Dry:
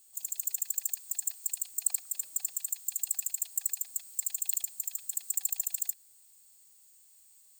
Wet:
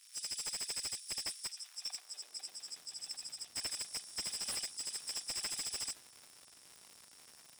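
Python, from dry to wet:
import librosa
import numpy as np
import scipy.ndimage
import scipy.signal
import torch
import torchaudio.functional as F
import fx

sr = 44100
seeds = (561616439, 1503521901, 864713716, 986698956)

y = fx.freq_compress(x, sr, knee_hz=2400.0, ratio=1.5)
y = fx.tilt_eq(y, sr, slope=-3.5, at=(1.47, 3.56))
y = fx.dmg_crackle(y, sr, seeds[0], per_s=290.0, level_db=-43.0)
y = fx.filter_sweep_highpass(y, sr, from_hz=2300.0, to_hz=71.0, start_s=1.28, end_s=3.24, q=0.77)
y = fx.slew_limit(y, sr, full_power_hz=110.0)
y = y * librosa.db_to_amplitude(-1.0)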